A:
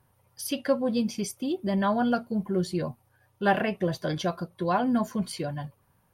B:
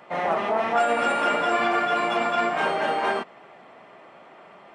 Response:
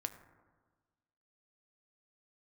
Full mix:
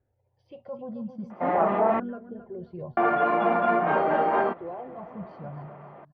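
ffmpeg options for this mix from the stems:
-filter_complex "[0:a]aemphasis=mode=reproduction:type=50fm,alimiter=limit=-21dB:level=0:latency=1:release=16,asplit=2[a][b];[b]afreqshift=0.45[c];[a][c]amix=inputs=2:normalize=1,volume=-5dB,asplit=2[d][e];[e]volume=-10dB[f];[1:a]adelay=1300,volume=2.5dB,asplit=3[g][h][i];[g]atrim=end=2,asetpts=PTS-STARTPTS,afade=t=out:st=1.996:d=0.004:c=hsin[j];[h]atrim=start=2:end=2.97,asetpts=PTS-STARTPTS,volume=0[k];[i]atrim=start=2.97,asetpts=PTS-STARTPTS,afade=t=in:d=0.004:c=hsin[l];[j][k][l]concat=n=3:v=0:a=1[m];[f]aecho=0:1:267|534|801|1068:1|0.31|0.0961|0.0298[n];[d][m][n]amix=inputs=3:normalize=0,lowpass=1.2k"

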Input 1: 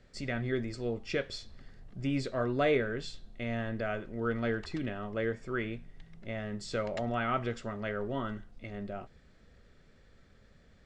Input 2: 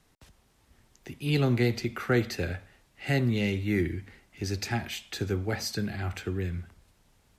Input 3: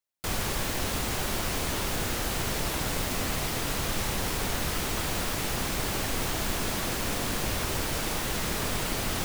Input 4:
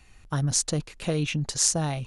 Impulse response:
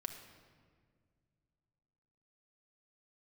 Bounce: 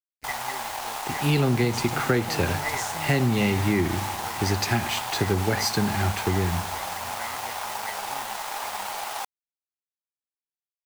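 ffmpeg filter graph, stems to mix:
-filter_complex "[0:a]lowpass=f=2k:t=q:w=15,volume=-12.5dB[a];[1:a]agate=range=-33dB:threshold=-56dB:ratio=3:detection=peak,acontrast=24,volume=2dB,asplit=2[b][c];[c]volume=-9.5dB[d];[2:a]highpass=f=820:t=q:w=4.8,volume=-4dB,asplit=2[e][f];[f]volume=-6.5dB[g];[3:a]acompressor=threshold=-26dB:ratio=6,adelay=1200,volume=-5.5dB[h];[4:a]atrim=start_sample=2205[i];[d][g]amix=inputs=2:normalize=0[j];[j][i]afir=irnorm=-1:irlink=0[k];[a][b][e][h][k]amix=inputs=5:normalize=0,aeval=exprs='sgn(val(0))*max(abs(val(0))-0.0106,0)':c=same,acompressor=threshold=-18dB:ratio=6"

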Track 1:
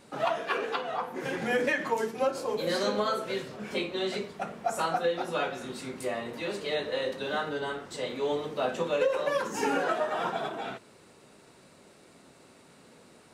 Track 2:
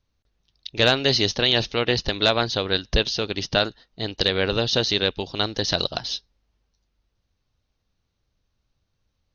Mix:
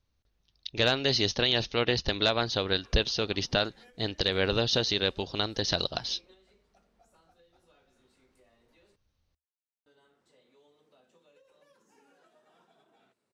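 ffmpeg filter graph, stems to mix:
-filter_complex "[0:a]acrossover=split=180|360|3200[a][b][c][d];[a]acompressor=threshold=-58dB:ratio=4[e];[b]acompressor=threshold=-47dB:ratio=4[f];[c]acompressor=threshold=-41dB:ratio=4[g];[d]acompressor=threshold=-48dB:ratio=4[h];[e][f][g][h]amix=inputs=4:normalize=0,adelay=2350,volume=-18.5dB,asplit=3[i][j][k];[i]atrim=end=8.96,asetpts=PTS-STARTPTS,afade=t=out:st=8.956:d=0.004:c=hsin[l];[j]atrim=start=8.96:end=9.86,asetpts=PTS-STARTPTS,volume=0[m];[k]atrim=start=9.86,asetpts=PTS-STARTPTS,afade=t=in:d=0.004:c=hsin[n];[l][m][n]concat=n=3:v=0:a=1[o];[1:a]volume=-3dB,asplit=2[p][q];[q]apad=whole_len=691594[r];[o][r]sidechaingate=range=-7dB:threshold=-54dB:ratio=16:detection=peak[s];[s][p]amix=inputs=2:normalize=0,equalizer=f=75:t=o:w=0.22:g=4,alimiter=limit=-13dB:level=0:latency=1:release=311"

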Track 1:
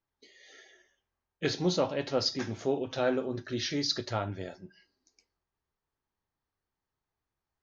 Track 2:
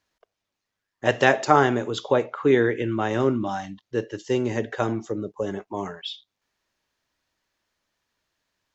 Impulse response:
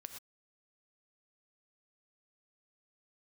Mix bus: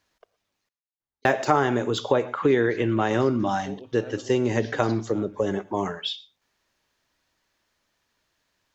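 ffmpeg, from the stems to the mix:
-filter_complex "[0:a]adelay=1000,volume=-9dB[a];[1:a]deesser=0.7,volume=2.5dB,asplit=3[b][c][d];[b]atrim=end=0.69,asetpts=PTS-STARTPTS,afade=t=out:st=0.686:d=0.004:c=hsin[e];[c]atrim=start=0.69:end=1.25,asetpts=PTS-STARTPTS,volume=0[f];[d]atrim=start=1.25,asetpts=PTS-STARTPTS,afade=t=in:d=0.004:c=hsin[g];[e][f][g]concat=n=3:v=0:a=1,asplit=3[h][i][j];[i]volume=-7dB[k];[j]apad=whole_len=380517[l];[a][l]sidechaincompress=threshold=-21dB:ratio=8:attack=9:release=390[m];[2:a]atrim=start_sample=2205[n];[k][n]afir=irnorm=-1:irlink=0[o];[m][h][o]amix=inputs=3:normalize=0,acompressor=threshold=-19dB:ratio=2.5"

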